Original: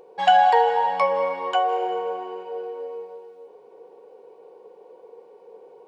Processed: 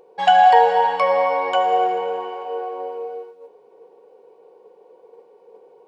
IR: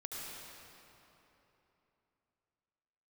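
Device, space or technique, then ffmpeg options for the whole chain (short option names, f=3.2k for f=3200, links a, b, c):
keyed gated reverb: -filter_complex "[0:a]asplit=3[a][b][c];[1:a]atrim=start_sample=2205[d];[b][d]afir=irnorm=-1:irlink=0[e];[c]apad=whole_len=258965[f];[e][f]sidechaingate=range=-33dB:threshold=-42dB:ratio=16:detection=peak,volume=1dB[g];[a][g]amix=inputs=2:normalize=0,volume=-2dB"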